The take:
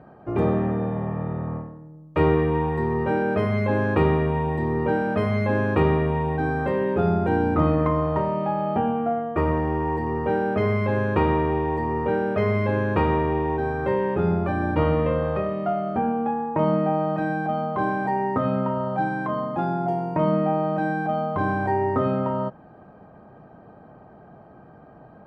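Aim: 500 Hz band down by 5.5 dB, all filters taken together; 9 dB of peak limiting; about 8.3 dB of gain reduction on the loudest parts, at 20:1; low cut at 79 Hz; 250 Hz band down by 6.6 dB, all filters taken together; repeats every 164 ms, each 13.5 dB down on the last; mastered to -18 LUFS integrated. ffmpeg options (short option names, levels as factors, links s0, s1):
-af "highpass=79,equalizer=f=250:t=o:g=-8.5,equalizer=f=500:t=o:g=-4.5,acompressor=threshold=0.0447:ratio=20,alimiter=level_in=1.33:limit=0.0631:level=0:latency=1,volume=0.75,aecho=1:1:164|328:0.211|0.0444,volume=7.08"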